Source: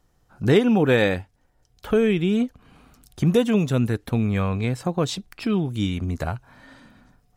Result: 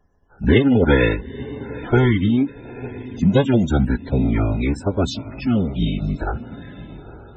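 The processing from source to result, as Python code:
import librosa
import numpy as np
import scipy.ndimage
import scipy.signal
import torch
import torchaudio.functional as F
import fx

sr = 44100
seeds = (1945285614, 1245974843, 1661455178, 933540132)

y = fx.echo_diffused(x, sr, ms=902, feedback_pct=42, wet_db=-15)
y = fx.pitch_keep_formants(y, sr, semitones=-10.0)
y = fx.spec_topn(y, sr, count=64)
y = y * 10.0 ** (4.0 / 20.0)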